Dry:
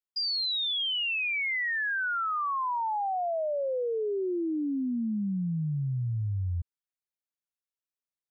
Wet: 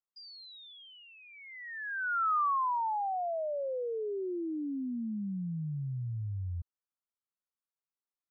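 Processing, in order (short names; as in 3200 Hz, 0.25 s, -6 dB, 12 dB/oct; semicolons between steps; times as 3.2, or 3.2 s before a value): resonant high shelf 1800 Hz -12 dB, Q 3; gain -6 dB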